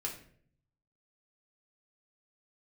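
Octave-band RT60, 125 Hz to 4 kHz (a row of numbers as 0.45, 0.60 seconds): 1.1, 0.80, 0.65, 0.45, 0.50, 0.40 seconds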